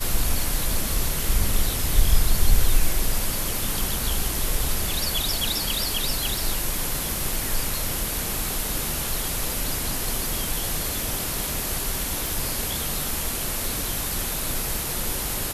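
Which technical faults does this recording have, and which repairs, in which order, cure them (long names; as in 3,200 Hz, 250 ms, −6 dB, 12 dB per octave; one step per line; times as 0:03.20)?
0:12.27: click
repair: click removal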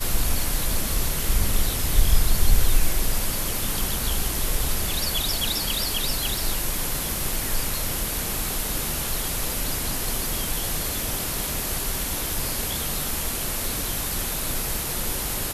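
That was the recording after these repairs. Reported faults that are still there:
none of them is left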